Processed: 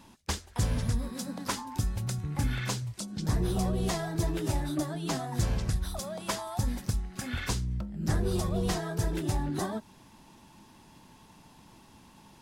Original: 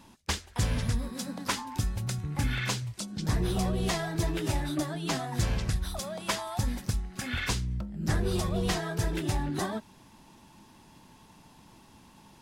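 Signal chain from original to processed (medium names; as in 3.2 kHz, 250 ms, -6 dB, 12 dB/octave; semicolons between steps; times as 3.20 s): dynamic bell 2.5 kHz, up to -6 dB, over -47 dBFS, Q 0.79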